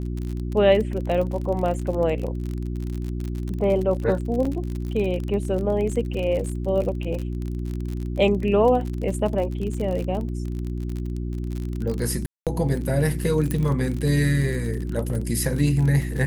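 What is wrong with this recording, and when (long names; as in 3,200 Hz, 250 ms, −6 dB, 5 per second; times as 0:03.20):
surface crackle 47 per second −28 dBFS
mains hum 60 Hz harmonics 6 −28 dBFS
0:04.45: drop-out 4.2 ms
0:12.26–0:12.47: drop-out 207 ms
0:13.51: click −12 dBFS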